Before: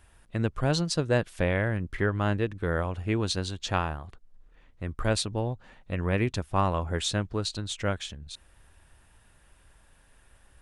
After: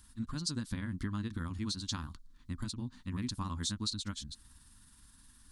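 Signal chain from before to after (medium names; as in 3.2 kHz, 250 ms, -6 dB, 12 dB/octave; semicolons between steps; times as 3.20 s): FFT filter 160 Hz 0 dB, 250 Hz +9 dB, 440 Hz -17 dB, 700 Hz -20 dB, 1 kHz -1 dB, 2.6 kHz -7 dB, 4.2 kHz +10 dB, 6 kHz +8 dB; compression 4:1, threshold -33 dBFS, peak gain reduction 13 dB; granular stretch 0.52×, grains 105 ms; trim -1 dB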